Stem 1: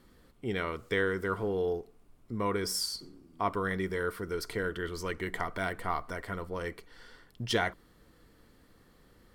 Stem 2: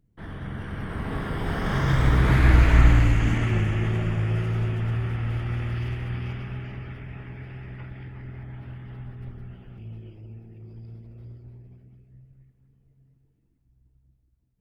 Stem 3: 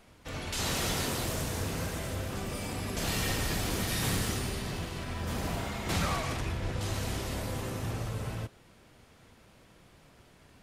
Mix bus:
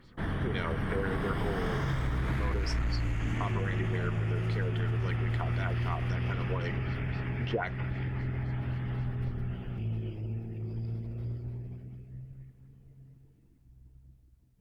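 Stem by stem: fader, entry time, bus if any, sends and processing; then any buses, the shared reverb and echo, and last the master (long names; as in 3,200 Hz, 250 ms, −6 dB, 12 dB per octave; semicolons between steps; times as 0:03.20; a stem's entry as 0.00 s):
+1.5 dB, 0.00 s, no send, auto-filter low-pass sine 3.8 Hz 580–5,400 Hz
−4.5 dB, 0.00 s, no send, sine wavefolder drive 3 dB, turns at −4.5 dBFS; speech leveller within 4 dB
muted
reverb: not used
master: downward compressor, threshold −28 dBFS, peak gain reduction 12.5 dB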